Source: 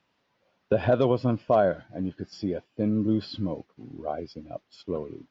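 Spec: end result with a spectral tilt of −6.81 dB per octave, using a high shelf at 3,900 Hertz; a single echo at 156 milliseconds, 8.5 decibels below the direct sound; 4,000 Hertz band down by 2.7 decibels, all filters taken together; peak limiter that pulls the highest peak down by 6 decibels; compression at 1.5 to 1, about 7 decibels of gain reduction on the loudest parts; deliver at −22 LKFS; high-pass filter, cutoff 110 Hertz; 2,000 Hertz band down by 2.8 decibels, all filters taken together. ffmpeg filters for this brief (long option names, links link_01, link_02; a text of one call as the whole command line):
ffmpeg -i in.wav -af "highpass=110,equalizer=frequency=2000:width_type=o:gain=-4.5,highshelf=frequency=3900:gain=5.5,equalizer=frequency=4000:width_type=o:gain=-5.5,acompressor=threshold=-37dB:ratio=1.5,alimiter=limit=-22.5dB:level=0:latency=1,aecho=1:1:156:0.376,volume=13.5dB" out.wav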